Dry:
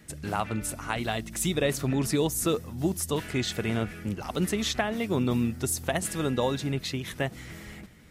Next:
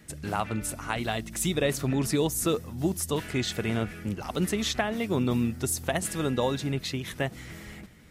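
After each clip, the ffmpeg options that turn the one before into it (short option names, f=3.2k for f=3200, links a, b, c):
-af anull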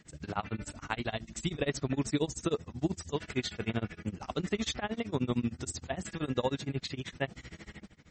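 -af "tremolo=f=13:d=0.97,volume=-1dB" -ar 44100 -c:a libmp3lame -b:a 32k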